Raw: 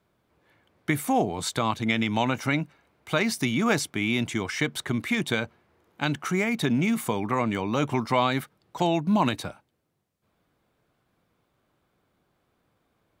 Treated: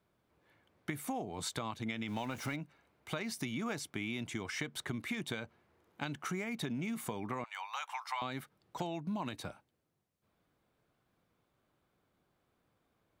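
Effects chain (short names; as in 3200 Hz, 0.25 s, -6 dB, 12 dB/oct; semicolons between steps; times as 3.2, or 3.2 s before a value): 2.08–2.56 zero-crossing step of -34.5 dBFS; 7.44–8.22 elliptic high-pass 810 Hz, stop band 70 dB; compressor 6:1, threshold -29 dBFS, peak gain reduction 11.5 dB; gain -6 dB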